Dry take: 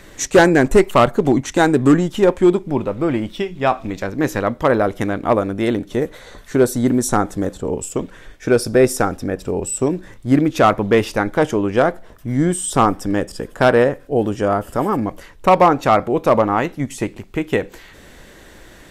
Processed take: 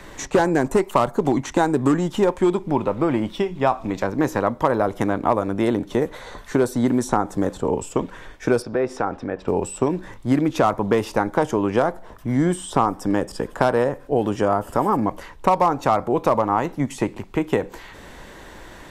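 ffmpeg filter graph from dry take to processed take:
ffmpeg -i in.wav -filter_complex "[0:a]asettb=1/sr,asplit=3[link_01][link_02][link_03];[link_01]atrim=end=8.624[link_04];[link_02]atrim=start=8.62:end=9.48,asetpts=PTS-STARTPTS,afade=type=in:duration=0.004:curve=qsin,afade=type=out:start_time=0.856:duration=0.004:curve=qsin,lowpass=3100,acompressor=threshold=-22dB:ratio=2:attack=3.2:release=140:knee=1:detection=peak,lowshelf=frequency=200:gain=-10[link_05];[link_03]atrim=start=9.476[link_06];[link_04][link_05]acrossfade=duration=0.004:curve1=hsin:curve2=qsin[link_07];[link_07][link_06]acrossfade=duration=0.004:curve1=qsin:curve2=hsin,equalizer=frequency=950:width_type=o:width=0.61:gain=7.5,acrossover=split=120|1500|4800[link_08][link_09][link_10][link_11];[link_08]acompressor=threshold=-38dB:ratio=4[link_12];[link_09]acompressor=threshold=-17dB:ratio=4[link_13];[link_10]acompressor=threshold=-38dB:ratio=4[link_14];[link_11]acompressor=threshold=-36dB:ratio=4[link_15];[link_12][link_13][link_14][link_15]amix=inputs=4:normalize=0,highshelf=frequency=7100:gain=-5,volume=1dB" out.wav

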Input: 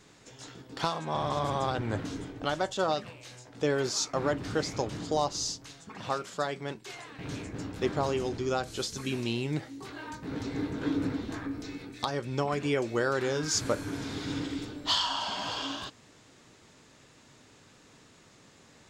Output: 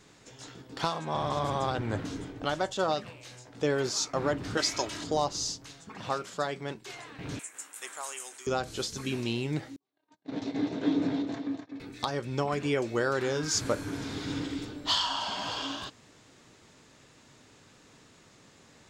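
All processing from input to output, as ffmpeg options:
ffmpeg -i in.wav -filter_complex "[0:a]asettb=1/sr,asplit=3[link_01][link_02][link_03];[link_01]atrim=end=4.574[link_04];[link_02]atrim=start=4.57:end=5.04,asetpts=PTS-STARTPTS,afade=type=in:duration=0.004:curve=qsin,afade=type=out:start_time=0.466:duration=0.004:curve=qsin,tiltshelf=frequency=700:gain=-7.5,aecho=1:1:3.1:0.51,atrim=end_sample=20727[link_05];[link_03]atrim=start=5.036[link_06];[link_04][link_05]acrossfade=duration=0.004:curve1=hsin:curve2=qsin[link_07];[link_07][link_06]acrossfade=duration=0.004:curve1=qsin:curve2=hsin,asettb=1/sr,asplit=3[link_08][link_09][link_10];[link_08]atrim=end=7.394[link_11];[link_09]atrim=start=7.39:end=8.47,asetpts=PTS-STARTPTS,afade=type=in:duration=0.004:curve=qsin,afade=type=out:start_time=1.076:duration=0.004:curve=qsin,highpass=1400,highshelf=frequency=6400:width_type=q:width=3:gain=12[link_12];[link_10]atrim=start=8.466[link_13];[link_11][link_12]acrossfade=duration=0.004:curve1=hsin:curve2=qsin[link_14];[link_14][link_13]acrossfade=duration=0.004:curve1=qsin:curve2=hsin,asettb=1/sr,asplit=3[link_15][link_16][link_17];[link_15]atrim=end=9.764[link_18];[link_16]atrim=start=9.76:end=11.8,asetpts=PTS-STARTPTS,afade=type=in:duration=0.004:curve=qsin,afade=type=out:start_time=2.036:duration=0.004:curve=qsin,agate=range=-46dB:threshold=-37dB:ratio=16:release=100:detection=peak,highpass=frequency=120:width=0.5412,highpass=frequency=120:width=1.3066,equalizer=frequency=130:width_type=q:width=4:gain=-4,equalizer=frequency=280:width_type=q:width=4:gain=3,equalizer=frequency=660:width_type=q:width=4:gain=9,equalizer=frequency=1400:width_type=q:width=4:gain=-6,equalizer=frequency=3600:width_type=q:width=4:gain=4,lowpass=frequency=7000:width=0.5412,lowpass=frequency=7000:width=1.3066,aecho=1:1:251:0.447,atrim=end_sample=89964[link_19];[link_17]atrim=start=11.796[link_20];[link_18][link_19]acrossfade=duration=0.004:curve1=hsin:curve2=qsin[link_21];[link_21][link_20]acrossfade=duration=0.004:curve1=qsin:curve2=hsin" out.wav

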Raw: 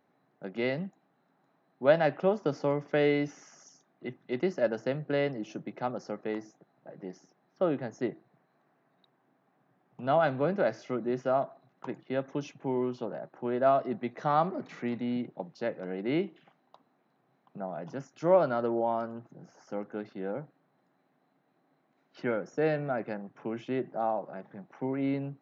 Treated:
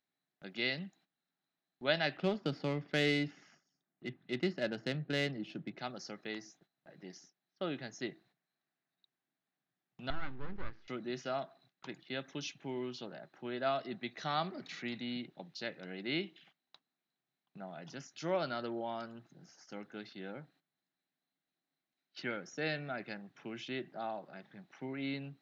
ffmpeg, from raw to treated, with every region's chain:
ffmpeg -i in.wav -filter_complex "[0:a]asettb=1/sr,asplit=3[link_01][link_02][link_03];[link_01]atrim=end=2.174[link_04];[link_02]atrim=start=2.17:end=5.79,asetpts=PTS-STARTPTS,afade=type=in:duration=0.004:curve=qsin,afade=type=out:start_time=3.616:duration=0.004:curve=qsin,lowshelf=frequency=330:gain=7.5,bandreject=frequency=6000:width=7,adynamicsmooth=sensitivity=6.5:basefreq=2700[link_05];[link_03]atrim=start=5.786[link_06];[link_04][link_05]acrossfade=duration=0.004:curve1=hsin:curve2=qsin[link_07];[link_07][link_06]acrossfade=duration=0.004:curve1=qsin:curve2=hsin,asettb=1/sr,asplit=3[link_08][link_09][link_10];[link_08]atrim=end=10.104[link_11];[link_09]atrim=start=10.1:end=10.88,asetpts=PTS-STARTPTS,afade=type=in:duration=0.004:curve=qsin,afade=type=out:start_time=0.776:duration=0.004:curve=qsin,aeval=exprs='max(val(0),0)':channel_layout=same,lowpass=1100,equalizer=frequency=640:width_type=o:width=0.48:gain=-14.5[link_12];[link_10]atrim=start=10.876[link_13];[link_11][link_12]acrossfade=duration=0.004:curve1=hsin:curve2=qsin[link_14];[link_14][link_13]acrossfade=duration=0.004:curve1=qsin:curve2=hsin,agate=range=-14dB:threshold=-58dB:ratio=16:detection=peak,equalizer=frequency=125:width_type=o:width=1:gain=-8,equalizer=frequency=250:width_type=o:width=1:gain=-6,equalizer=frequency=500:width_type=o:width=1:gain=-11,equalizer=frequency=1000:width_type=o:width=1:gain=-10,equalizer=frequency=4000:width_type=o:width=1:gain=10,volume=1dB" out.wav

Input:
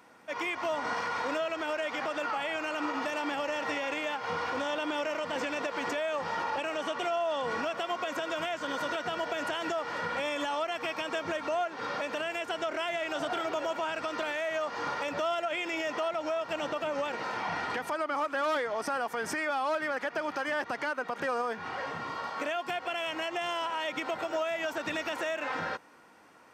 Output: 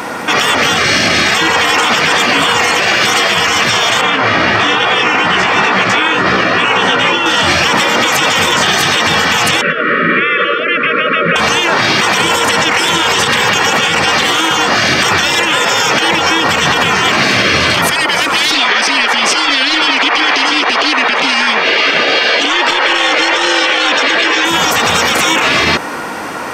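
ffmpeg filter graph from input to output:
ffmpeg -i in.wav -filter_complex "[0:a]asettb=1/sr,asplit=3[link_01][link_02][link_03];[link_01]atrim=end=4.014[link_04];[link_02]atrim=start=4.01:end=7.26,asetpts=PTS-STARTPTS,afade=type=in:duration=0.004:curve=qsin,afade=type=out:start_time=3.246:duration=0.004:curve=qsin,aemphasis=mode=reproduction:type=75fm,flanger=delay=15.5:depth=3.1:speed=2.2,asplit=2[link_05][link_06];[link_06]adelay=16,volume=-6.5dB[link_07];[link_05][link_07]amix=inputs=2:normalize=0,atrim=end_sample=143325[link_08];[link_03]atrim=start=7.256[link_09];[link_04][link_08]acrossfade=duration=0.004:curve1=hsin:curve2=qsin[link_10];[link_10][link_09]acrossfade=duration=0.004:curve1=qsin:curve2=hsin,asettb=1/sr,asplit=3[link_11][link_12][link_13];[link_11]atrim=end=9.614[link_14];[link_12]atrim=start=9.61:end=11.36,asetpts=PTS-STARTPTS,afade=type=in:duration=0.004:curve=qsin,afade=type=out:start_time=1.746:duration=0.004:curve=qsin,asuperstop=centerf=820:order=20:qfactor=1.5,highpass=frequency=190:width=0.5412,highpass=frequency=190:width=1.3066,equalizer=frequency=210:width_type=q:width=4:gain=-7,equalizer=frequency=320:width_type=q:width=4:gain=7,equalizer=frequency=560:width_type=q:width=4:gain=-5,equalizer=frequency=1200:width_type=q:width=4:gain=-6,equalizer=frequency=1800:width_type=q:width=4:gain=-6,lowpass=frequency=2000:width=0.5412,lowpass=frequency=2000:width=1.3066[link_15];[link_13]atrim=start=11.356[link_16];[link_14][link_15]acrossfade=duration=0.004:curve1=hsin:curve2=qsin[link_17];[link_17][link_16]acrossfade=duration=0.004:curve1=qsin:curve2=hsin,asettb=1/sr,asplit=3[link_18][link_19][link_20];[link_18]atrim=end=18.514[link_21];[link_19]atrim=start=18.51:end=24.45,asetpts=PTS-STARTPTS,afade=type=in:duration=0.004:curve=qsin,afade=type=out:start_time=5.936:duration=0.004:curve=qsin,highpass=720,lowpass=3600,acontrast=69[link_22];[link_20]atrim=start=24.446[link_23];[link_21][link_22]acrossfade=duration=0.004:curve1=hsin:curve2=qsin[link_24];[link_24][link_23]acrossfade=duration=0.004:curve1=qsin:curve2=hsin,acontrast=84,afftfilt=real='re*lt(hypot(re,im),0.0794)':imag='im*lt(hypot(re,im),0.0794)':win_size=1024:overlap=0.75,alimiter=level_in=30dB:limit=-1dB:release=50:level=0:latency=1,volume=-1dB" out.wav

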